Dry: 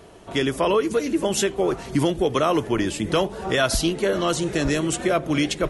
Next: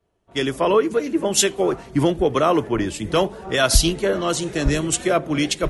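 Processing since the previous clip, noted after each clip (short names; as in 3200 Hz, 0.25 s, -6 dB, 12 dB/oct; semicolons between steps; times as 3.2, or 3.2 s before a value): three-band expander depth 100%; gain +2 dB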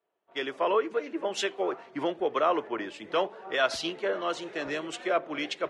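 BPF 480–3000 Hz; gain -5.5 dB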